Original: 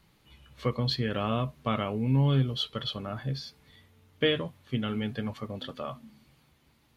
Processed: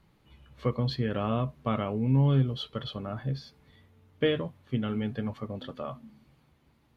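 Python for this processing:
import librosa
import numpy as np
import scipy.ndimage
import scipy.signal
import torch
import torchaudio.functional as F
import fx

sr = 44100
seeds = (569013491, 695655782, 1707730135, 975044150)

y = fx.high_shelf(x, sr, hz=2100.0, db=-10.0)
y = y * librosa.db_to_amplitude(1.0)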